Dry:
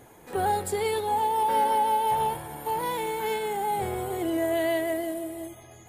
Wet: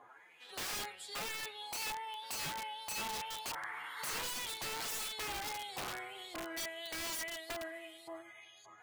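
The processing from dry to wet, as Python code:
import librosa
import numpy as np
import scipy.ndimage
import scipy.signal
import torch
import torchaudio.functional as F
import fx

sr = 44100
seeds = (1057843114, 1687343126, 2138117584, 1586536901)

y = fx.rider(x, sr, range_db=4, speed_s=0.5)
y = fx.filter_lfo_bandpass(y, sr, shape='saw_up', hz=2.6, low_hz=990.0, high_hz=4700.0, q=4.9)
y = fx.stretch_vocoder(y, sr, factor=1.5)
y = (np.mod(10.0 ** (40.0 / 20.0) * y + 1.0, 2.0) - 1.0) / 10.0 ** (40.0 / 20.0)
y = fx.spec_paint(y, sr, seeds[0], shape='noise', start_s=3.55, length_s=0.67, low_hz=830.0, high_hz=2200.0, level_db=-51.0)
y = y * 10.0 ** (5.0 / 20.0)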